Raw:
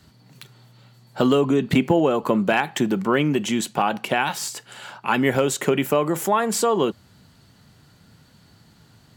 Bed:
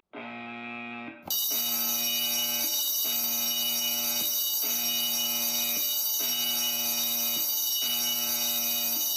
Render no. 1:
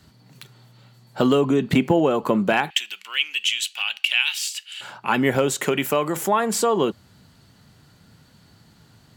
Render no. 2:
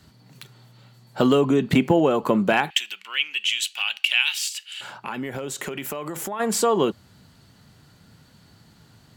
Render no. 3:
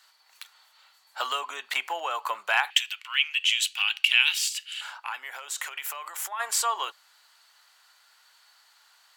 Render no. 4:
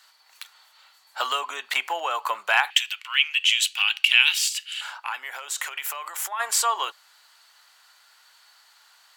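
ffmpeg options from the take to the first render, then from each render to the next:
ffmpeg -i in.wav -filter_complex "[0:a]asettb=1/sr,asplit=3[link_01][link_02][link_03];[link_01]atrim=end=2.704[link_04];[link_02]atrim=start=2.7:end=4.81,asetpts=PTS-STARTPTS,afade=type=in:duration=0.004:curve=qsin,afade=type=out:start_time=2.106:duration=0.004:curve=qsin,highpass=frequency=2800:width_type=q:width=4[link_05];[link_03]atrim=start=4.806[link_06];[link_04][link_05]acrossfade=duration=0.004:curve1=hsin:curve2=qsin[link_07];[link_07][link_06]acrossfade=duration=0.004:curve1=qsin:curve2=hsin,asettb=1/sr,asplit=3[link_08][link_09][link_10];[link_08]atrim=end=5.614[link_11];[link_09]atrim=start=5.61:end=6.17,asetpts=PTS-STARTPTS,afade=type=in:duration=0.004:curve=qsin,afade=type=out:start_time=0.556:duration=0.004:curve=qsin,tiltshelf=frequency=970:gain=-3.5[link_12];[link_10]atrim=start=6.166[link_13];[link_11][link_12]acrossfade=duration=0.004:curve1=hsin:curve2=qsin[link_14];[link_14][link_13]acrossfade=duration=0.004:curve1=qsin:curve2=hsin" out.wav
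ffmpeg -i in.wav -filter_complex "[0:a]asettb=1/sr,asplit=3[link_01][link_02][link_03];[link_01]atrim=end=2.934[link_04];[link_02]atrim=start=2.93:end=3.49,asetpts=PTS-STARTPTS,afade=type=in:duration=0.004:curve=qsin,afade=type=out:start_time=0.556:duration=0.004:curve=qsin,bass=frequency=250:gain=4,treble=frequency=4000:gain=-7[link_05];[link_03]atrim=start=3.486[link_06];[link_04][link_05]acrossfade=duration=0.004:curve1=hsin:curve2=qsin[link_07];[link_07][link_06]acrossfade=duration=0.004:curve1=qsin:curve2=hsin,asplit=3[link_08][link_09][link_10];[link_08]afade=type=out:start_time=4.48:duration=0.02[link_11];[link_09]acompressor=threshold=-27dB:ratio=6:attack=3.2:release=140:knee=1:detection=peak,afade=type=in:start_time=4.48:duration=0.02,afade=type=out:start_time=6.39:duration=0.02[link_12];[link_10]afade=type=in:start_time=6.39:duration=0.02[link_13];[link_11][link_12][link_13]amix=inputs=3:normalize=0" out.wav
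ffmpeg -i in.wav -af "highpass=frequency=910:width=0.5412,highpass=frequency=910:width=1.3066" out.wav
ffmpeg -i in.wav -af "volume=3.5dB,alimiter=limit=-3dB:level=0:latency=1" out.wav

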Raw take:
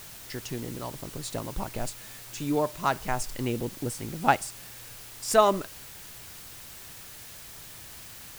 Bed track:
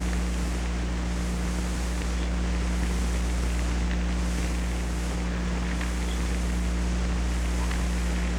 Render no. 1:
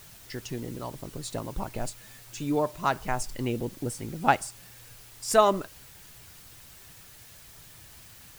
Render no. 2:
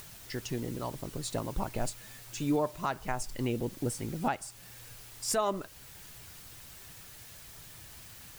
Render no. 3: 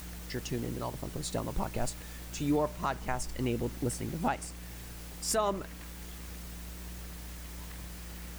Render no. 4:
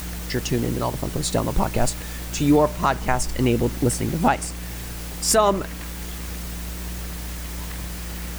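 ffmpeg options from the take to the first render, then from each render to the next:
ffmpeg -i in.wav -af "afftdn=noise_reduction=6:noise_floor=-45" out.wav
ffmpeg -i in.wav -af "acompressor=mode=upward:threshold=-47dB:ratio=2.5,alimiter=limit=-19.5dB:level=0:latency=1:release=426" out.wav
ffmpeg -i in.wav -i bed.wav -filter_complex "[1:a]volume=-18dB[link_01];[0:a][link_01]amix=inputs=2:normalize=0" out.wav
ffmpeg -i in.wav -af "volume=12dB" out.wav

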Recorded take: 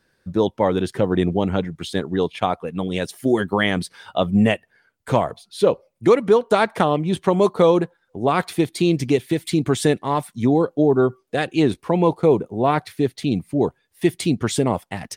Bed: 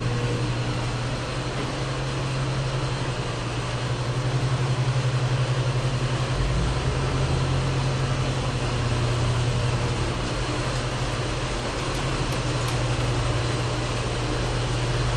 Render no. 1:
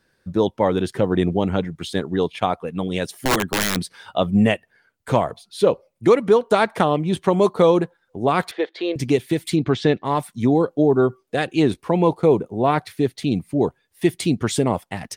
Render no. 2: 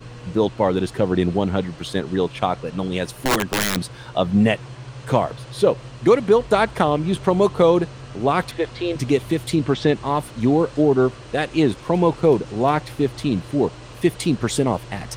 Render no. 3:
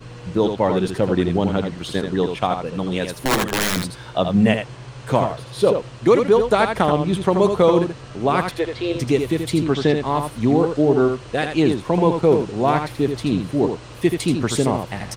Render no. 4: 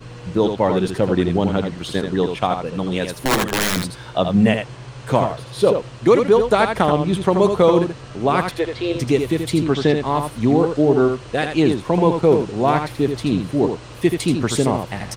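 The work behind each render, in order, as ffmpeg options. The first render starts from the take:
ffmpeg -i in.wav -filter_complex "[0:a]asplit=3[link_01][link_02][link_03];[link_01]afade=type=out:start_time=3.11:duration=0.02[link_04];[link_02]aeval=exprs='(mod(4.22*val(0)+1,2)-1)/4.22':channel_layout=same,afade=type=in:start_time=3.11:duration=0.02,afade=type=out:start_time=3.75:duration=0.02[link_05];[link_03]afade=type=in:start_time=3.75:duration=0.02[link_06];[link_04][link_05][link_06]amix=inputs=3:normalize=0,asettb=1/sr,asplit=3[link_07][link_08][link_09];[link_07]atrim=end=8.514[link_10];[link_08]atrim=start=8.51:end=8.96,asetpts=PTS-STARTPTS,afade=type=in:duration=0.004:curve=qsin,afade=type=out:start_time=0.446:duration=0.004:curve=qsin,highpass=frequency=410:width=0.5412,highpass=frequency=410:width=1.3066,equalizer=frequency=520:width_type=q:width=4:gain=8,equalizer=frequency=1700:width_type=q:width=4:gain=8,equalizer=frequency=2500:width_type=q:width=4:gain=-5,lowpass=frequency=3700:width=0.5412,lowpass=frequency=3700:width=1.3066[link_11];[link_09]atrim=start=8.956[link_12];[link_10][link_11]acrossfade=duration=0.004:curve1=hsin:curve2=qsin[link_13];[link_13][link_12]acrossfade=duration=0.004:curve1=qsin:curve2=hsin,asplit=3[link_14][link_15][link_16];[link_14]afade=type=out:start_time=9.55:duration=0.02[link_17];[link_15]lowpass=frequency=4800:width=0.5412,lowpass=frequency=4800:width=1.3066,afade=type=in:start_time=9.55:duration=0.02,afade=type=out:start_time=10.04:duration=0.02[link_18];[link_16]afade=type=in:start_time=10.04:duration=0.02[link_19];[link_17][link_18][link_19]amix=inputs=3:normalize=0" out.wav
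ffmpeg -i in.wav -i bed.wav -filter_complex "[1:a]volume=-13dB[link_01];[0:a][link_01]amix=inputs=2:normalize=0" out.wav
ffmpeg -i in.wav -af "aecho=1:1:81:0.473" out.wav
ffmpeg -i in.wav -af "volume=1dB,alimiter=limit=-2dB:level=0:latency=1" out.wav

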